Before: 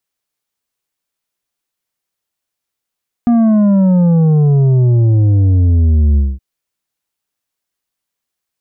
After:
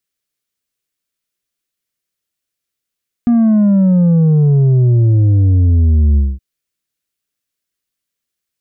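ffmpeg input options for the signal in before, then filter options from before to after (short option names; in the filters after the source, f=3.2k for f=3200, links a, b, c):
-f lavfi -i "aevalsrc='0.398*clip((3.12-t)/0.22,0,1)*tanh(2.24*sin(2*PI*240*3.12/log(65/240)*(exp(log(65/240)*t/3.12)-1)))/tanh(2.24)':d=3.12:s=44100"
-af "equalizer=f=860:t=o:w=0.82:g=-10.5"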